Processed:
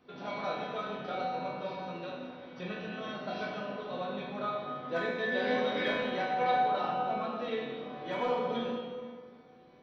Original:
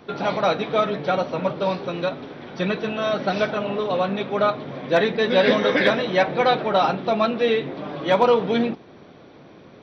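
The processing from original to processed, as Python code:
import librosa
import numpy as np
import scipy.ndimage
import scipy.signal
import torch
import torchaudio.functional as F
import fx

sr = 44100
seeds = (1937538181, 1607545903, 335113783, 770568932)

y = fx.high_shelf(x, sr, hz=4700.0, db=-11.5, at=(6.81, 7.37))
y = fx.comb_fb(y, sr, f0_hz=250.0, decay_s=0.94, harmonics='all', damping=0.0, mix_pct=90)
y = fx.rev_plate(y, sr, seeds[0], rt60_s=1.9, hf_ratio=0.6, predelay_ms=0, drr_db=-2.0)
y = y * librosa.db_to_amplitude(-1.0)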